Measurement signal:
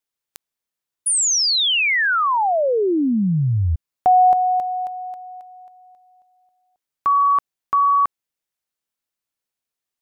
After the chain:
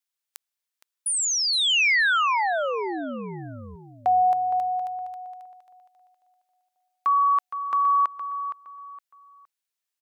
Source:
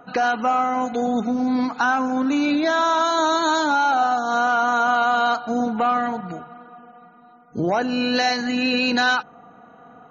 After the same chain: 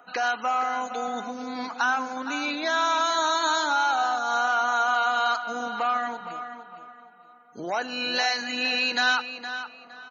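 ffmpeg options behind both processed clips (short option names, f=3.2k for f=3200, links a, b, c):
-filter_complex "[0:a]highpass=f=1.4k:p=1,acrossover=split=2600[a][b];[b]acompressor=threshold=-24dB:ratio=4:attack=1:release=60[c];[a][c]amix=inputs=2:normalize=0,asplit=2[d][e];[e]adelay=465,lowpass=f=4.3k:p=1,volume=-10dB,asplit=2[f][g];[g]adelay=465,lowpass=f=4.3k:p=1,volume=0.29,asplit=2[h][i];[i]adelay=465,lowpass=f=4.3k:p=1,volume=0.29[j];[d][f][h][j]amix=inputs=4:normalize=0"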